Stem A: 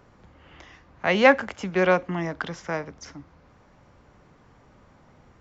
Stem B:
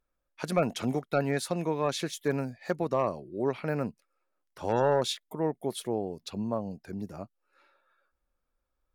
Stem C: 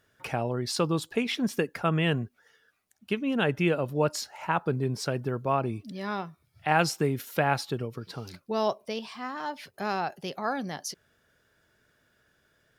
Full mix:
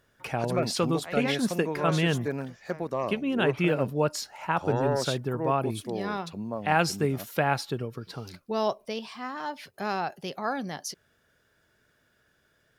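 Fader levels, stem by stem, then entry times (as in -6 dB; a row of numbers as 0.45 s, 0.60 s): -18.5 dB, -2.5 dB, 0.0 dB; 0.00 s, 0.00 s, 0.00 s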